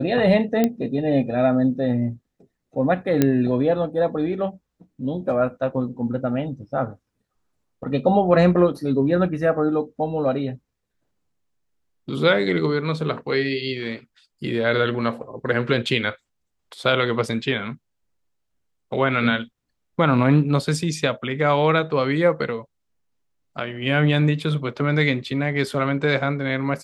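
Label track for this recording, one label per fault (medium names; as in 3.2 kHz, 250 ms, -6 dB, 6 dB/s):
0.640000	0.640000	pop -7 dBFS
3.220000	3.220000	pop -4 dBFS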